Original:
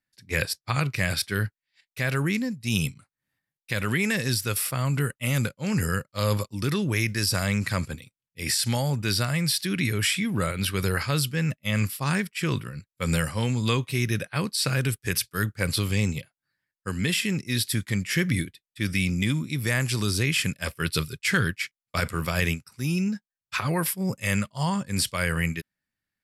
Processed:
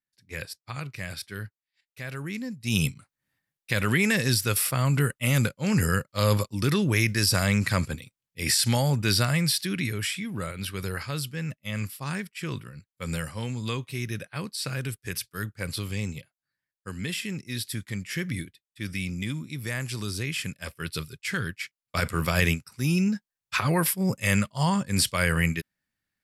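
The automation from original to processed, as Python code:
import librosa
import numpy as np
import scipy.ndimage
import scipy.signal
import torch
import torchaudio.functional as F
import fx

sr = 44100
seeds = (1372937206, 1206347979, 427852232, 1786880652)

y = fx.gain(x, sr, db=fx.line((2.23, -10.0), (2.84, 2.0), (9.31, 2.0), (10.17, -6.5), (21.44, -6.5), (22.22, 2.0)))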